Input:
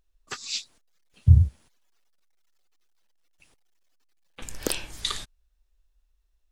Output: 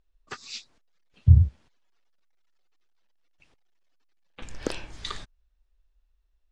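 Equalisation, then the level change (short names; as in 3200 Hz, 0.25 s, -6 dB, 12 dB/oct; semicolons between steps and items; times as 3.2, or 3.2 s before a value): dynamic EQ 3300 Hz, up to -5 dB, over -44 dBFS, Q 1.4; air absorption 120 m; 0.0 dB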